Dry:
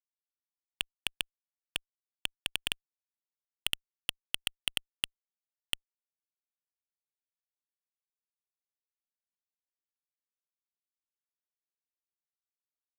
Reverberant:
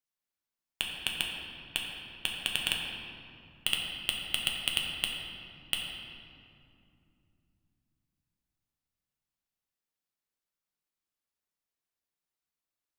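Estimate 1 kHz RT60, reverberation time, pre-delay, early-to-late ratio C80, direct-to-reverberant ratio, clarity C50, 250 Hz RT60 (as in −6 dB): 2.5 s, 2.6 s, 7 ms, 2.5 dB, −1.5 dB, 1.5 dB, 4.1 s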